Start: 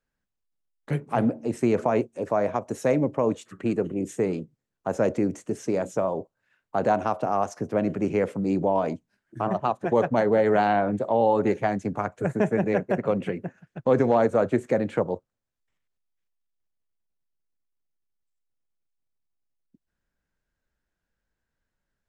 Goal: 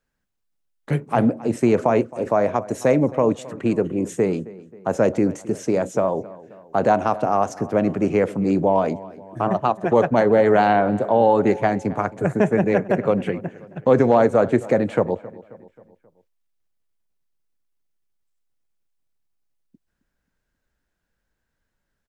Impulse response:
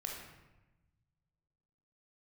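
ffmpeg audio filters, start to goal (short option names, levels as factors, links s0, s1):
-filter_complex "[0:a]asplit=2[s0][s1];[s1]adelay=267,lowpass=f=3500:p=1,volume=0.112,asplit=2[s2][s3];[s3]adelay=267,lowpass=f=3500:p=1,volume=0.51,asplit=2[s4][s5];[s5]adelay=267,lowpass=f=3500:p=1,volume=0.51,asplit=2[s6][s7];[s7]adelay=267,lowpass=f=3500:p=1,volume=0.51[s8];[s0][s2][s4][s6][s8]amix=inputs=5:normalize=0,volume=1.78"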